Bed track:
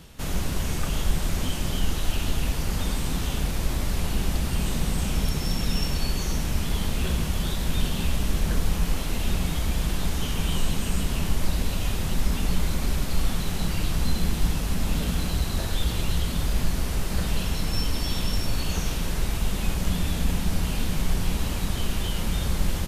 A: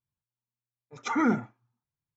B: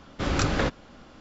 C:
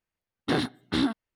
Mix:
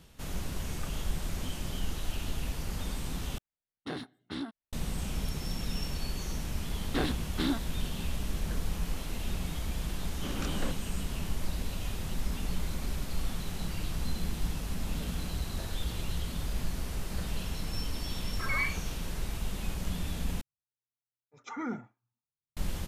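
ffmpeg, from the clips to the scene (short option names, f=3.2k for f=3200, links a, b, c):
-filter_complex "[3:a]asplit=2[a][b];[1:a]asplit=2[c][d];[0:a]volume=-9dB[e];[2:a]lowshelf=f=140:t=q:w=3:g=-13.5[f];[c]lowpass=f=2.1k:t=q:w=0.5098,lowpass=f=2.1k:t=q:w=0.6013,lowpass=f=2.1k:t=q:w=0.9,lowpass=f=2.1k:t=q:w=2.563,afreqshift=-2500[g];[e]asplit=3[h][i][j];[h]atrim=end=3.384[k];[a]atrim=end=1.35,asetpts=PTS-STARTPTS,volume=-12.5dB[l];[i]atrim=start=4.726:end=20.414[m];[d]atrim=end=2.16,asetpts=PTS-STARTPTS,volume=-11.5dB[n];[j]atrim=start=22.566[o];[b]atrim=end=1.35,asetpts=PTS-STARTPTS,volume=-5.5dB,afade=t=in:d=0.004:c=hsin,afade=t=out:st=1.346:d=0.004:c=hsin,adelay=6460[p];[f]atrim=end=1.2,asetpts=PTS-STARTPTS,volume=-14dB,afade=t=in:d=0.004:c=hsin,afade=t=out:st=1.196:d=0.004:c=hsin,adelay=10030[q];[g]atrim=end=2.16,asetpts=PTS-STARTPTS,volume=-8dB,afade=t=in:d=0.004:c=hsin,afade=t=out:st=2.156:d=0.004:c=hsin,adelay=17330[r];[k][l]acrossfade=d=0.004:c1=hsin:c2=hsin[s];[s][m]acrossfade=d=0.004:c1=hsin:c2=hsin[t];[t][n]acrossfade=d=0.004:c1=hsin:c2=hsin[u];[u][o]acrossfade=d=0.004:c1=hsin:c2=hsin[v];[v][p][q][r]amix=inputs=4:normalize=0"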